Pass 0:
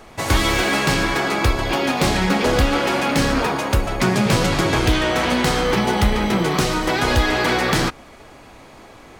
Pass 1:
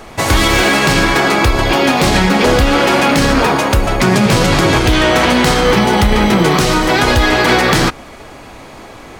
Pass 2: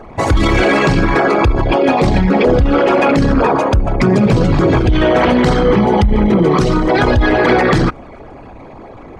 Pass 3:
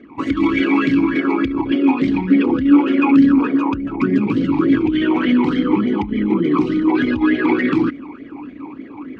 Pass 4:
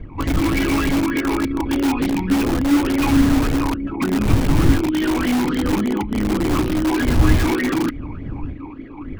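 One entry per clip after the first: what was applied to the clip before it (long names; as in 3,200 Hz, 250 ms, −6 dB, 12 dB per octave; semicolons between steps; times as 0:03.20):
boost into a limiter +10 dB; level −1 dB
spectral envelope exaggerated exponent 2; dynamic equaliser 7,900 Hz, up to +4 dB, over −39 dBFS, Q 0.75
reversed playback; upward compression, threshold −21 dBFS; reversed playback; formant filter swept between two vowels i-u 3.4 Hz; level +7 dB
wind on the microphone 90 Hz −18 dBFS; in parallel at −7 dB: wrap-around overflow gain 11 dB; on the sum: level −5 dB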